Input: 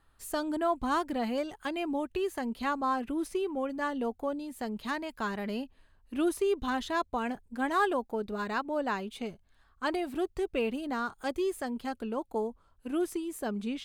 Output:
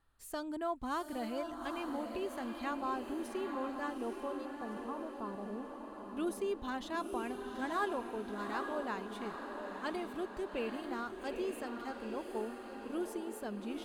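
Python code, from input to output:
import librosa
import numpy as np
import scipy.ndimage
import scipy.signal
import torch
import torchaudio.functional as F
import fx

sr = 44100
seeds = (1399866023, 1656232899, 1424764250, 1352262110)

p1 = fx.ellip_lowpass(x, sr, hz=1200.0, order=4, stop_db=40, at=(4.45, 6.17))
p2 = p1 + fx.echo_diffused(p1, sr, ms=841, feedback_pct=57, wet_db=-5.5, dry=0)
y = F.gain(torch.from_numpy(p2), -8.0).numpy()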